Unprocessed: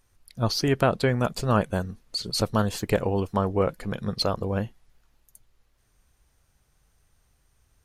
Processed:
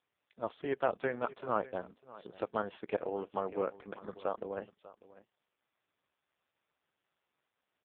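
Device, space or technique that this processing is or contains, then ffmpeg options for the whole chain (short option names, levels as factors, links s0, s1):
satellite phone: -af "highpass=380,lowpass=3100,aecho=1:1:595:0.119,volume=0.473" -ar 8000 -c:a libopencore_amrnb -b:a 4750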